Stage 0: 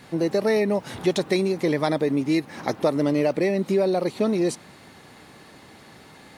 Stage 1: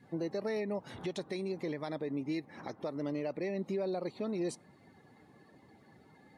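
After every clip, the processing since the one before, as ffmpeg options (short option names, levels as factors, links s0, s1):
-af "afftdn=nr=15:nf=-45,alimiter=limit=0.126:level=0:latency=1:release=401,volume=0.355"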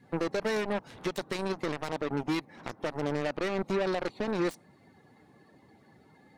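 -af "aeval=exprs='0.0473*(cos(1*acos(clip(val(0)/0.0473,-1,1)))-cos(1*PI/2))+0.00841*(cos(3*acos(clip(val(0)/0.0473,-1,1)))-cos(3*PI/2))+0.00668*(cos(7*acos(clip(val(0)/0.0473,-1,1)))-cos(7*PI/2))':c=same,volume=2.24"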